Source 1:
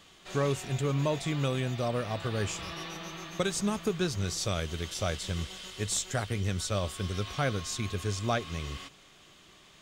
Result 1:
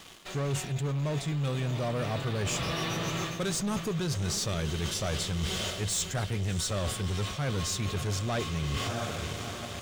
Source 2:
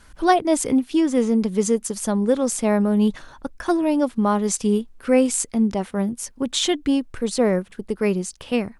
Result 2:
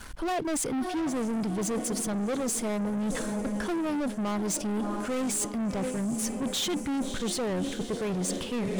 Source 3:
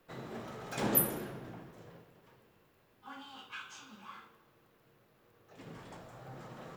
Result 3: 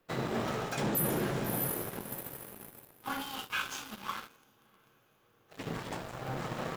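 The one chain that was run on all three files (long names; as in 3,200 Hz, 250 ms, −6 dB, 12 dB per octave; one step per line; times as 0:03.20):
feedback delay with all-pass diffusion 663 ms, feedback 52%, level −15 dB
hard clipping −13.5 dBFS
leveller curve on the samples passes 3
dynamic equaliser 150 Hz, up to +8 dB, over −40 dBFS, Q 3.9
reversed playback
downward compressor 16 to 1, threshold −30 dBFS
reversed playback
level +2 dB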